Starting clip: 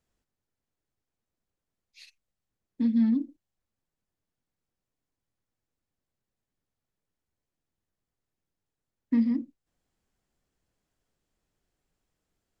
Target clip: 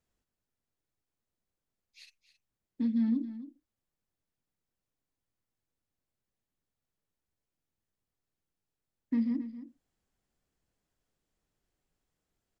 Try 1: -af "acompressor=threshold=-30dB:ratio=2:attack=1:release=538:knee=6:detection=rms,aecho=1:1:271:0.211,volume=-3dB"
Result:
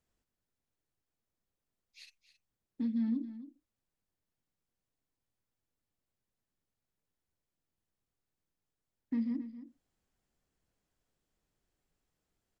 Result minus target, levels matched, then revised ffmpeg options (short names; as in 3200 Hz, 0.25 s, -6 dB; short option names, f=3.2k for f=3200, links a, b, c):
compressor: peak gain reduction +4 dB
-af "acompressor=threshold=-21.5dB:ratio=2:attack=1:release=538:knee=6:detection=rms,aecho=1:1:271:0.211,volume=-3dB"